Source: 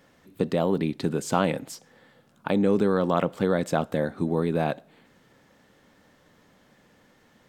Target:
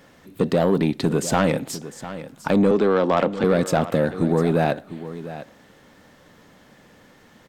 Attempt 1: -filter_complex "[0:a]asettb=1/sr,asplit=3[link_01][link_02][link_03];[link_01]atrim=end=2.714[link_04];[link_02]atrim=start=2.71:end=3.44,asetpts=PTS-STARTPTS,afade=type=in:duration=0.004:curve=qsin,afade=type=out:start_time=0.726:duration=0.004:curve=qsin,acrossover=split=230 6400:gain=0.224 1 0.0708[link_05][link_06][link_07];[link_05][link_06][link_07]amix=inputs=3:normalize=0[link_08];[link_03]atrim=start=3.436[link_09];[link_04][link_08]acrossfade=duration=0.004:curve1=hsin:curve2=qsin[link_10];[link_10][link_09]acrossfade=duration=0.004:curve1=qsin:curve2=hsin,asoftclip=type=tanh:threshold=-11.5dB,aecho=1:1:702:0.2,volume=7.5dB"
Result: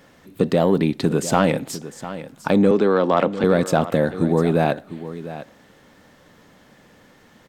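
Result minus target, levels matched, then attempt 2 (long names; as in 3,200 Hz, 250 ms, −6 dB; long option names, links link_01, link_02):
soft clipping: distortion −7 dB
-filter_complex "[0:a]asettb=1/sr,asplit=3[link_01][link_02][link_03];[link_01]atrim=end=2.714[link_04];[link_02]atrim=start=2.71:end=3.44,asetpts=PTS-STARTPTS,afade=type=in:duration=0.004:curve=qsin,afade=type=out:start_time=0.726:duration=0.004:curve=qsin,acrossover=split=230 6400:gain=0.224 1 0.0708[link_05][link_06][link_07];[link_05][link_06][link_07]amix=inputs=3:normalize=0[link_08];[link_03]atrim=start=3.436[link_09];[link_04][link_08]acrossfade=duration=0.004:curve1=hsin:curve2=qsin[link_10];[link_10][link_09]acrossfade=duration=0.004:curve1=qsin:curve2=hsin,asoftclip=type=tanh:threshold=-17.5dB,aecho=1:1:702:0.2,volume=7.5dB"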